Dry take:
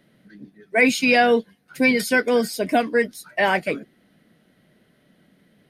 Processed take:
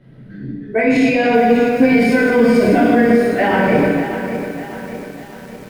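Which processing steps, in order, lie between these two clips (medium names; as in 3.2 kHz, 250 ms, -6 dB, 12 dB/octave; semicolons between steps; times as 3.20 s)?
plate-style reverb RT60 1.4 s, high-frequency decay 0.95×, DRR -10 dB; peak limiter -8 dBFS, peak gain reduction 12.5 dB; RIAA curve playback; bit-crushed delay 598 ms, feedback 55%, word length 6-bit, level -10 dB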